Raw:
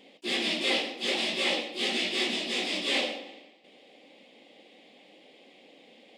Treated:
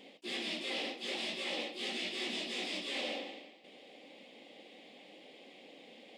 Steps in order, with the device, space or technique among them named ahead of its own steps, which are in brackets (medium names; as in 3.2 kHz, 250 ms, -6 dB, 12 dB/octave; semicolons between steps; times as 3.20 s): compression on the reversed sound (reverse; compression 6:1, threshold -36 dBFS, peak gain reduction 12.5 dB; reverse)